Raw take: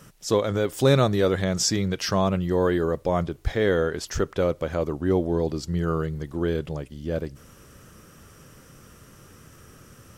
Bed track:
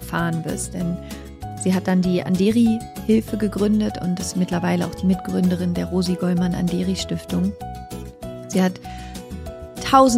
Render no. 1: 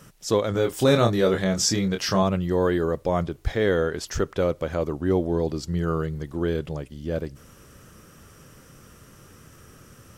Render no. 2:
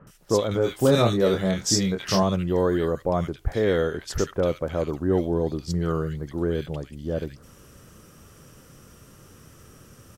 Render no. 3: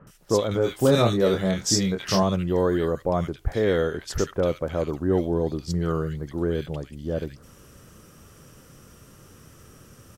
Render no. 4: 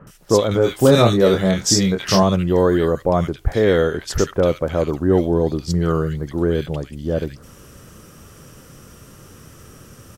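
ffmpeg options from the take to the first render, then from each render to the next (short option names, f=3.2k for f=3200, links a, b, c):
-filter_complex "[0:a]asettb=1/sr,asplit=3[a][b][c];[a]atrim=end=0.524[d];[b]atrim=start=0.52:end=2.23,asetpts=PTS-STARTPTS,afade=t=in:d=0.004:c=qsin,afade=t=out:st=1.706:d=0.004:c=qsin,asplit=2[e][f];[f]adelay=26,volume=-5.5dB[g];[e][g]amix=inputs=2:normalize=0,atrim=end_sample=75411[h];[c]atrim=start=2.226[i];[d][h]acrossfade=d=0.004:c1=hsin:c2=qsin[j];[j][i]acrossfade=d=0.004:c1=qsin:c2=hsin"
-filter_complex "[0:a]acrossover=split=1700[a][b];[b]adelay=70[c];[a][c]amix=inputs=2:normalize=0"
-af anull
-af "volume=6.5dB,alimiter=limit=-2dB:level=0:latency=1"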